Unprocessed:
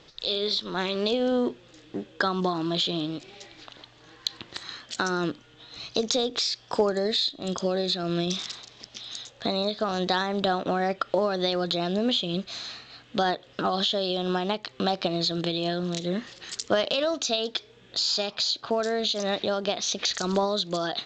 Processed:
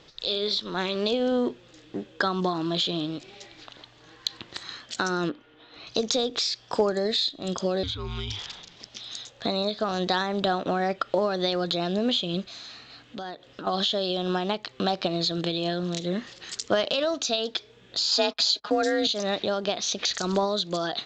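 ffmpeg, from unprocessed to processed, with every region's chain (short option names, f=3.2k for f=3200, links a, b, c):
-filter_complex "[0:a]asettb=1/sr,asplit=3[a][b][c];[a]atrim=end=5.294[d];[b]atrim=start=5.29:end=5.87,asetpts=PTS-STARTPTS,afade=t=in:d=0.004:c=qsin,afade=t=out:st=0.576:d=0.004:c=qsin,lowpass=2.7k,lowshelf=f=220:t=q:w=1.5:g=-7[e];[c]atrim=start=5.866[f];[d][e]acrossfade=d=0.004:c1=hsin:c2=qsin[g];[g][f]acrossfade=d=0.004:c1=qsin:c2=hsin,asettb=1/sr,asplit=3[h][i][j];[h]atrim=end=7.834[k];[i]atrim=start=7.83:end=8.76,asetpts=PTS-STARTPTS,afade=t=in:d=0.004:c=qsin,afade=t=out:st=0.926:d=0.004:c=qsin,acrossover=split=570|3800[l][m][n];[l]acompressor=threshold=-34dB:ratio=4[o];[m]acompressor=threshold=-33dB:ratio=4[p];[n]acompressor=threshold=-41dB:ratio=4[q];[o][p][q]amix=inputs=3:normalize=0,afreqshift=-290[r];[j]atrim=start=8.756[s];[k][r]acrossfade=d=0.004:c1=hsin:c2=qsin[t];[t][s]acrossfade=d=0.004:c1=qsin:c2=hsin,asettb=1/sr,asplit=3[u][v][w];[u]atrim=end=12.444[x];[v]atrim=start=12.44:end=13.67,asetpts=PTS-STARTPTS,afade=t=in:d=0.004:c=qsin,afade=t=out:st=1.226:d=0.004:c=qsin,equalizer=f=280:t=o:w=0.28:g=4,acompressor=threshold=-42dB:ratio=2:attack=3.2:release=140:knee=1:detection=peak[y];[w]atrim=start=13.666[z];[x][y]acrossfade=d=0.004:c1=hsin:c2=qsin[aa];[aa][z]acrossfade=d=0.004:c1=qsin:c2=hsin,asettb=1/sr,asplit=3[ab][ac][ad];[ab]atrim=end=18.114[ae];[ac]atrim=start=18.11:end=19.07,asetpts=PTS-STARTPTS,afade=t=in:d=0.004:c=qsin,afade=t=out:st=0.956:d=0.004:c=qsin,agate=range=-35dB:threshold=-40dB:ratio=16:release=100:detection=peak,aecho=1:1:5:1,atrim=end_sample=42336,afreqshift=42[af];[ad]atrim=start=19.066[ag];[ae][af]acrossfade=d=0.004:c1=hsin:c2=qsin[ah];[ah][ag]acrossfade=d=0.004:c1=qsin:c2=hsin"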